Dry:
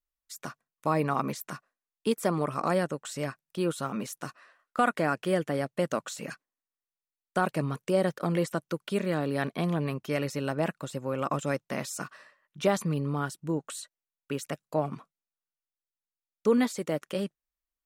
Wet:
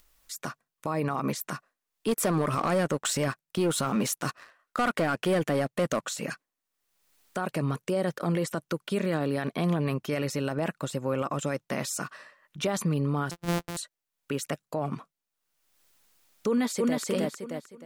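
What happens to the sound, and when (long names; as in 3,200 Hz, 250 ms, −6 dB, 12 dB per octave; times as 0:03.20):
0:02.08–0:06.03: leveller curve on the samples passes 2
0:13.31–0:13.77: samples sorted by size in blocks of 256 samples
0:16.49–0:17.04: delay throw 310 ms, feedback 30%, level −1 dB
whole clip: brickwall limiter −23.5 dBFS; upward compression, threshold −50 dBFS; level +4.5 dB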